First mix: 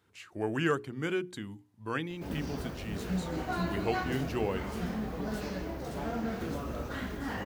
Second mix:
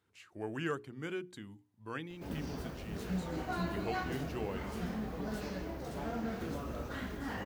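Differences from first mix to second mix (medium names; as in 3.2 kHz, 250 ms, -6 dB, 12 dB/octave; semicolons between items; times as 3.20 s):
speech -7.5 dB; background -3.5 dB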